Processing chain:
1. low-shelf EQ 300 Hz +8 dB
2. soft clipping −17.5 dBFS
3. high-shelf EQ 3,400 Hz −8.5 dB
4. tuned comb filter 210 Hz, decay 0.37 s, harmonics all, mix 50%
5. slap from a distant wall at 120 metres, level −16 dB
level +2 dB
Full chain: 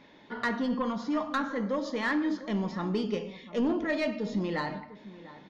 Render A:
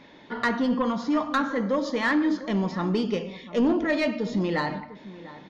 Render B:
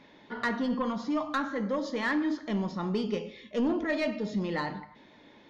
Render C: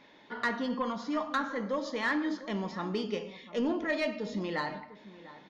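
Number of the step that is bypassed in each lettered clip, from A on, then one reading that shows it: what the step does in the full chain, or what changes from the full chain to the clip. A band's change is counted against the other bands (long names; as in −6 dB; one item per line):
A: 4, change in integrated loudness +5.0 LU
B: 5, echo-to-direct ratio −18.0 dB to none audible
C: 1, 125 Hz band −5.0 dB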